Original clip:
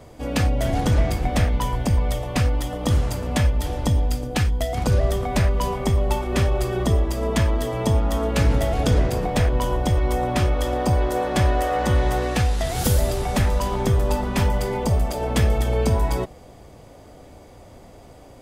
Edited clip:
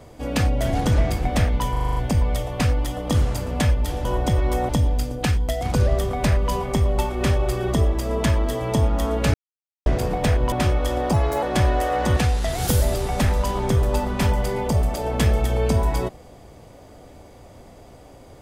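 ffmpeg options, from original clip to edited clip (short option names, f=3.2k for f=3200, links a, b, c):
-filter_complex "[0:a]asplit=15[a][b][c][d][e][f][g][h][i][j][k][l][m][n][o];[a]atrim=end=1.762[p];[b]atrim=start=1.718:end=1.762[q];[c]atrim=start=1.718:end=1.762[r];[d]atrim=start=1.718:end=1.762[s];[e]atrim=start=1.718:end=1.762[t];[f]atrim=start=1.718:end=1.762[u];[g]atrim=start=1.718:end=3.812[v];[h]atrim=start=9.638:end=10.282[w];[i]atrim=start=3.808:end=8.46,asetpts=PTS-STARTPTS,afade=t=out:st=4.648:d=0.004:c=hsin[x];[j]atrim=start=8.46:end=8.98,asetpts=PTS-STARTPTS,volume=0[y];[k]atrim=start=8.98:end=9.642,asetpts=PTS-STARTPTS,afade=t=in:d=0.004:c=hsin[z];[l]atrim=start=10.278:end=10.894[aa];[m]atrim=start=10.89:end=11.23,asetpts=PTS-STARTPTS,asetrate=50715,aresample=44100,atrim=end_sample=13038,asetpts=PTS-STARTPTS[ab];[n]atrim=start=11.226:end=11.972[ac];[o]atrim=start=12.328[ad];[p][q]acrossfade=d=0.004:c1=hsin:c2=hsin[ae];[ae][r]acrossfade=d=0.004:c1=hsin:c2=hsin[af];[af][s]acrossfade=d=0.004:c1=hsin:c2=hsin[ag];[ag][t]acrossfade=d=0.004:c1=hsin:c2=hsin[ah];[ah][u]acrossfade=d=0.004:c1=hsin:c2=hsin[ai];[ai][v]acrossfade=d=0.004:c1=hsin:c2=hsin[aj];[aj][w]acrossfade=d=0.004:c1=hsin:c2=hsin[ak];[x][y][z]concat=n=3:v=0:a=1[al];[ak][al]acrossfade=d=0.004:c1=hsin:c2=hsin[am];[am][aa]acrossfade=d=0.004:c1=hsin:c2=hsin[an];[an][ab]acrossfade=d=0.004:c1=hsin:c2=hsin[ao];[ao][ac]acrossfade=d=0.004:c1=hsin:c2=hsin[ap];[ap][ad]acrossfade=d=0.004:c1=hsin:c2=hsin"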